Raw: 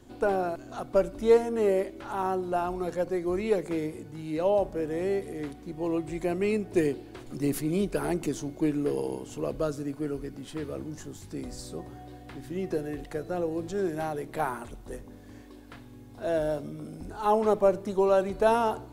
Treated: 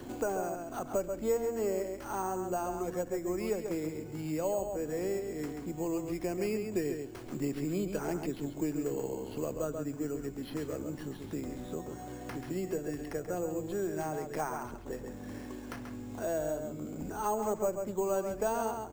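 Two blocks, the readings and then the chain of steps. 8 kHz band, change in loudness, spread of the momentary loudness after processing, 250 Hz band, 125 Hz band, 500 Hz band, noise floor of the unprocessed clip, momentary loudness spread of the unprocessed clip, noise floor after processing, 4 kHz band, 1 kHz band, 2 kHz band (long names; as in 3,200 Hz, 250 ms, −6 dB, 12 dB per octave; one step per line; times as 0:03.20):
+2.0 dB, −6.5 dB, 9 LU, −4.5 dB, −4.0 dB, −6.5 dB, −48 dBFS, 17 LU, −45 dBFS, −6.0 dB, −6.5 dB, −6.0 dB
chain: bad sample-rate conversion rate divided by 6×, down filtered, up hold
slap from a distant wall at 23 metres, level −7 dB
multiband upward and downward compressor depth 70%
level −6.5 dB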